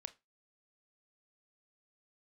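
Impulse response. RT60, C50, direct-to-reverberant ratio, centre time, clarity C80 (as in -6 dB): 0.20 s, 20.0 dB, 11.0 dB, 3 ms, 27.5 dB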